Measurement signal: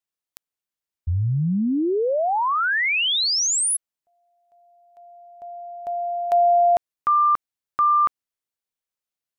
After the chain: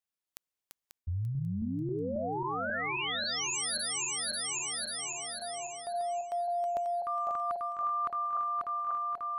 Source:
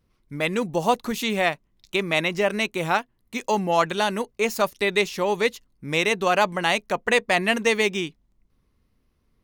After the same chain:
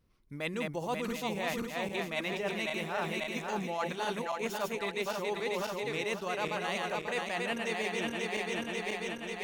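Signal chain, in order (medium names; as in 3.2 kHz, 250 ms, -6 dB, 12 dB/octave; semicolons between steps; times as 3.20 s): backward echo that repeats 270 ms, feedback 72%, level -3.5 dB; reverse; compression 6:1, threshold -28 dBFS; reverse; trim -3.5 dB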